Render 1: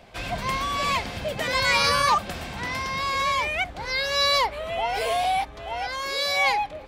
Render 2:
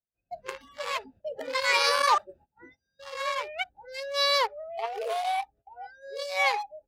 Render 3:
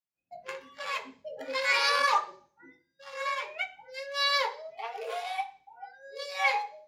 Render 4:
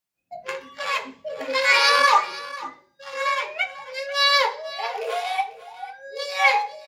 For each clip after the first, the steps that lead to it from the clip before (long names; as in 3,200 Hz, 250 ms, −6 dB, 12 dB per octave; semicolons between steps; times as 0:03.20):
adaptive Wiener filter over 41 samples; noise reduction from a noise print of the clip's start 30 dB; noise gate −54 dBFS, range −20 dB
convolution reverb RT60 0.40 s, pre-delay 3 ms, DRR 1 dB; level −6.5 dB
single-tap delay 495 ms −17 dB; level +8.5 dB